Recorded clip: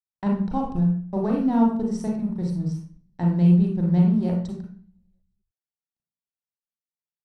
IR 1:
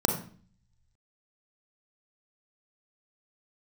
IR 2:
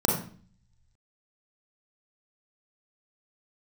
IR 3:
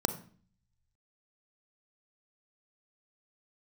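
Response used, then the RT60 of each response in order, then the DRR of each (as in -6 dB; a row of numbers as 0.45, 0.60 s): 2; 0.45, 0.45, 0.45 s; 3.0, -1.5, 9.5 dB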